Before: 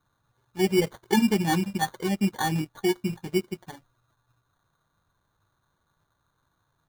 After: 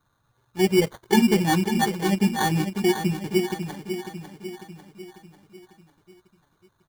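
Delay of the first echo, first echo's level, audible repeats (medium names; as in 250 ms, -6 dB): 547 ms, -8.5 dB, 5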